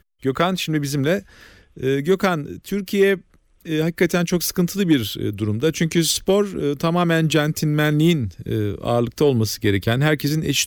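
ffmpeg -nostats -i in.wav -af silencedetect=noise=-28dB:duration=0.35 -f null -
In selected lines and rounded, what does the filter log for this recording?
silence_start: 1.19
silence_end: 1.78 | silence_duration: 0.58
silence_start: 3.16
silence_end: 3.66 | silence_duration: 0.50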